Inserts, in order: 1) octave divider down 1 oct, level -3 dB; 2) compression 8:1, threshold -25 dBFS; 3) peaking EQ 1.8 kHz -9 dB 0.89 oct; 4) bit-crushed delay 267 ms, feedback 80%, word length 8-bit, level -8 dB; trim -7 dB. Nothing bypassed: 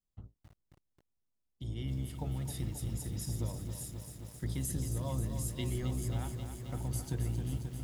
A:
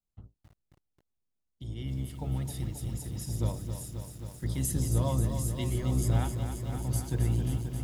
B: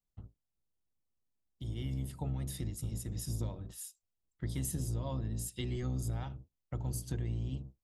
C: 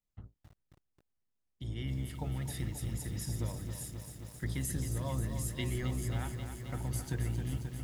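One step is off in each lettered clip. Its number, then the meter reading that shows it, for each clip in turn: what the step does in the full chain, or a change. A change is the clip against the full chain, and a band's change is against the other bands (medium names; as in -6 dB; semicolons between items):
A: 2, mean gain reduction 3.5 dB; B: 4, momentary loudness spread change +2 LU; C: 3, 2 kHz band +6.5 dB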